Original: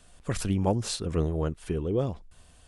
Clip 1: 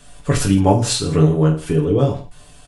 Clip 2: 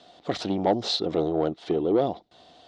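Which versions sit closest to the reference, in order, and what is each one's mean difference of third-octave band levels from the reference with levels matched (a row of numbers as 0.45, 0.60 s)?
1, 2; 3.5, 6.0 dB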